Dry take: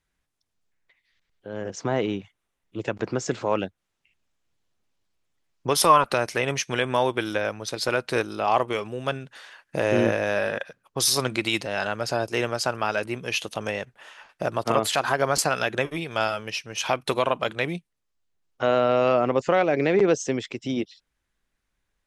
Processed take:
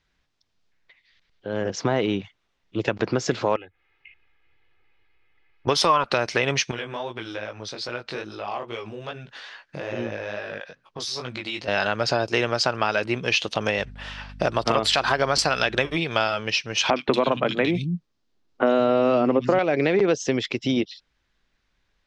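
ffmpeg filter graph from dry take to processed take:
ffmpeg -i in.wav -filter_complex "[0:a]asettb=1/sr,asplit=3[link_01][link_02][link_03];[link_01]atrim=end=3.564[link_04];[link_02]atrim=start=3.56:end=5.67,asetpts=PTS-STARTPTS,afade=type=in:duration=0.004:curve=qsin,afade=type=out:start_time=2.106:duration=0.004:curve=qsin,aecho=1:1:2.4:0.98,atrim=end_sample=93051,acompressor=threshold=-44dB:ratio=8:attack=3.2:release=140:knee=1:detection=peak,lowpass=frequency=2200:width_type=q:width=3.4[link_05];[link_03]atrim=start=5.666[link_06];[link_04][link_05]acrossfade=duration=0.004:curve1=hsin:curve2=qsin[link_07];[link_07][link_06]acrossfade=duration=0.004:curve1=qsin:curve2=hsin,asettb=1/sr,asplit=3[link_08][link_09][link_10];[link_08]atrim=end=6.714[link_11];[link_09]atrim=start=6.71:end=11.68,asetpts=PTS-STARTPTS,afade=type=in:duration=0.004:curve=qsin,afade=type=out:start_time=4.966:duration=0.004:curve=qsin,acompressor=threshold=-40dB:ratio=2:attack=3.2:release=140:knee=1:detection=peak,flanger=delay=16.5:depth=5:speed=2.4[link_12];[link_10]atrim=start=11.676[link_13];[link_11][link_12]acrossfade=duration=0.004:curve1=hsin:curve2=qsin[link_14];[link_14][link_13]acrossfade=duration=0.004:curve1=qsin:curve2=hsin,asettb=1/sr,asplit=3[link_15][link_16][link_17];[link_15]atrim=end=13.784[link_18];[link_16]atrim=start=13.78:end=15.95,asetpts=PTS-STARTPTS,afade=type=in:duration=0.004:curve=qsin,afade=type=out:start_time=2.166:duration=0.004:curve=qsin,highshelf=frequency=5000:gain=7.5,aeval=exprs='val(0)+0.00501*(sin(2*PI*50*n/s)+sin(2*PI*2*50*n/s)/2+sin(2*PI*3*50*n/s)/3+sin(2*PI*4*50*n/s)/4+sin(2*PI*5*50*n/s)/5)':channel_layout=same,bandreject=frequency=6600:width=10[link_19];[link_17]atrim=start=15.946[link_20];[link_18][link_19]acrossfade=duration=0.004:curve1=hsin:curve2=qsin[link_21];[link_21][link_20]acrossfade=duration=0.004:curve1=qsin:curve2=hsin,asettb=1/sr,asplit=3[link_22][link_23][link_24];[link_22]atrim=end=16.904[link_25];[link_23]atrim=start=16.9:end=19.59,asetpts=PTS-STARTPTS,afade=type=in:duration=0.004:curve=qsin,afade=type=out:start_time=2.686:duration=0.004:curve=qsin,equalizer=frequency=240:width_type=o:width=1.4:gain=11,acrossover=split=170|2500[link_26][link_27][link_28];[link_28]adelay=60[link_29];[link_26]adelay=180[link_30];[link_30][link_27][link_29]amix=inputs=3:normalize=0,atrim=end_sample=118629[link_31];[link_24]atrim=start=19.586[link_32];[link_25][link_31]acrossfade=duration=0.004:curve1=hsin:curve2=qsin[link_33];[link_33][link_32]acrossfade=duration=0.004:curve1=qsin:curve2=hsin,lowpass=frequency=4900:width=0.5412,lowpass=frequency=4900:width=1.3066,aemphasis=mode=production:type=50fm,acompressor=threshold=-25dB:ratio=3,volume=6.5dB" out.wav

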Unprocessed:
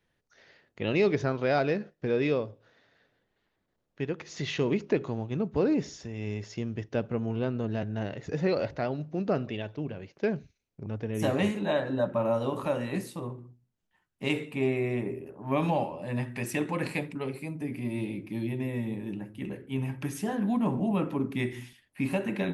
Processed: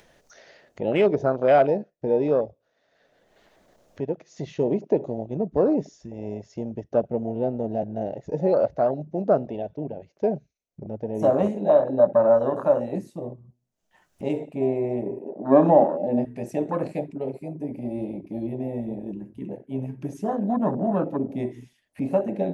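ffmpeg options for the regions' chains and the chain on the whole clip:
ffmpeg -i in.wav -filter_complex "[0:a]asettb=1/sr,asplit=3[link_01][link_02][link_03];[link_01]atrim=end=15.254[link_04];[link_02]atrim=start=15.25:end=16.25,asetpts=PTS-STARTPTS,afade=type=in:duration=0.004:curve=qsin,afade=type=out:start_time=0.996:duration=0.004:curve=qsin,highpass=160,lowpass=7100,equalizer=frequency=280:width=0.8:gain=9.5[link_05];[link_03]atrim=start=16.246[link_06];[link_04][link_05]acrossfade=duration=0.004:curve1=hsin:curve2=qsin[link_07];[link_07][link_06]acrossfade=duration=0.004:curve1=qsin:curve2=hsin,afwtdn=0.0251,equalizer=frequency=100:width_type=o:width=0.67:gain=-8,equalizer=frequency=630:width_type=o:width=0.67:gain=10,equalizer=frequency=6300:width_type=o:width=0.67:gain=7,acompressor=mode=upward:threshold=-37dB:ratio=2.5,volume=2.5dB" out.wav

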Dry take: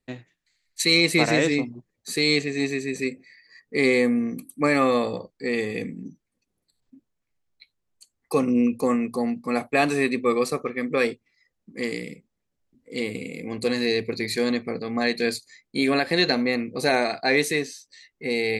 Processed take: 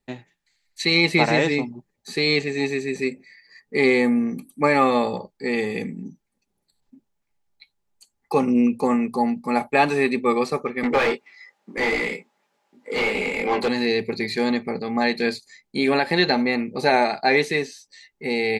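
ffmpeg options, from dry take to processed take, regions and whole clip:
ffmpeg -i in.wav -filter_complex "[0:a]asettb=1/sr,asplit=3[link_01][link_02][link_03];[link_01]atrim=end=10.834[link_04];[link_02]atrim=start=10.83:end=13.68,asetpts=PTS-STARTPTS,afade=type=in:duration=0.004:curve=qsin,afade=type=out:start_time=2.846:duration=0.004:curve=qsin,highpass=frequency=530:poles=1,flanger=delay=20:depth=2.5:speed=2.6,asplit=2[link_05][link_06];[link_06]highpass=frequency=720:poles=1,volume=31dB,asoftclip=type=tanh:threshold=-12.5dB[link_07];[link_05][link_07]amix=inputs=2:normalize=0,lowpass=frequency=1600:poles=1,volume=-6dB[link_08];[link_03]atrim=start=13.676[link_09];[link_04][link_08]acrossfade=duration=0.004:curve1=hsin:curve2=qsin[link_10];[link_10][link_09]acrossfade=duration=0.004:curve1=qsin:curve2=hsin,acrossover=split=5100[link_11][link_12];[link_12]acompressor=threshold=-48dB:ratio=4:attack=1:release=60[link_13];[link_11][link_13]amix=inputs=2:normalize=0,equalizer=frequency=850:width=7.8:gain=12,aecho=1:1:5:0.3,volume=1.5dB" out.wav

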